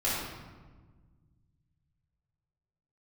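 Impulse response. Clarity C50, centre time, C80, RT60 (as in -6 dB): -1.5 dB, 89 ms, 1.5 dB, 1.4 s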